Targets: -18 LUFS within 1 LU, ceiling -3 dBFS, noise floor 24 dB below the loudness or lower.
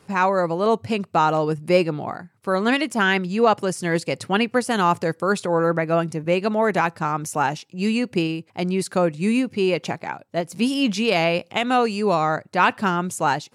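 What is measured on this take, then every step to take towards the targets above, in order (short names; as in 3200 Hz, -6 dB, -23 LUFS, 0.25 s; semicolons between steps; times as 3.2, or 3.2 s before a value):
loudness -21.5 LUFS; peak -5.0 dBFS; loudness target -18.0 LUFS
-> gain +3.5 dB; limiter -3 dBFS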